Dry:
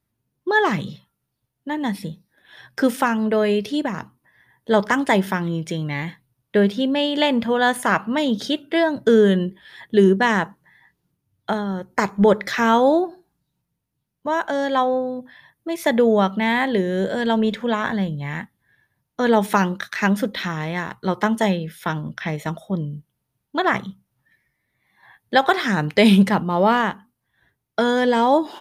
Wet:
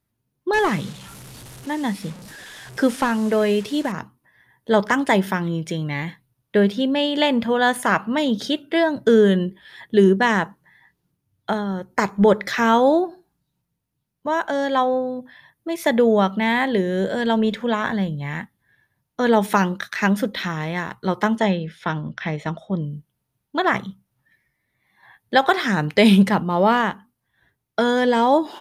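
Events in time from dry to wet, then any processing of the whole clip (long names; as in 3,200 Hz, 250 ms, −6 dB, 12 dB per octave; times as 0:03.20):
0:00.53–0:03.92: linear delta modulator 64 kbit/s, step −34 dBFS
0:21.37–0:22.82: low-pass filter 5,100 Hz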